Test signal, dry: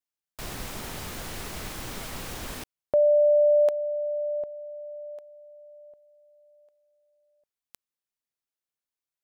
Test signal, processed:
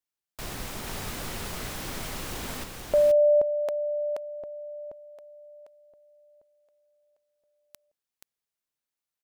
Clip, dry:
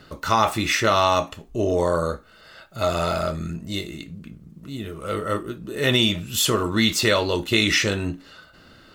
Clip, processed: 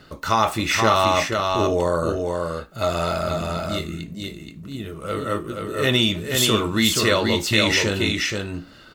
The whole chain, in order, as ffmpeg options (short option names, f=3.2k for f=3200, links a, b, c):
-af "aecho=1:1:478:0.631"